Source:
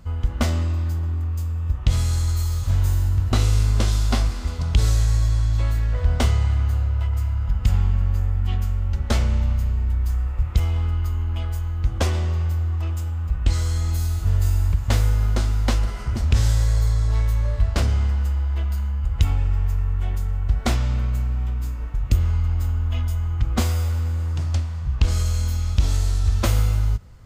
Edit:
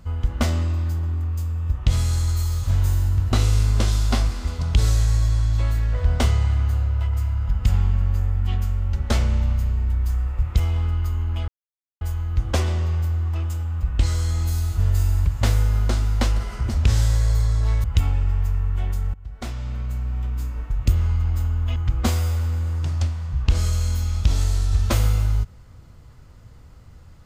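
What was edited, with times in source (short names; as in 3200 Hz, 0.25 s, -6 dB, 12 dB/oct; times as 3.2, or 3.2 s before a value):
11.48 insert silence 0.53 s
17.31–19.08 cut
20.38–21.68 fade in, from -22 dB
23–23.29 cut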